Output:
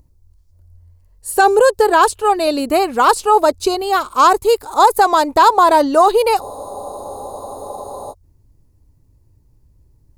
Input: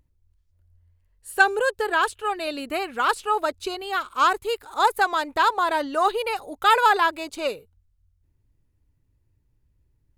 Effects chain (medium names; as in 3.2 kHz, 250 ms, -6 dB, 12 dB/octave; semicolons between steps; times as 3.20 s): high-order bell 2.2 kHz -9.5 dB; spectral freeze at 6.43 s, 1.69 s; loudness maximiser +14.5 dB; trim -1 dB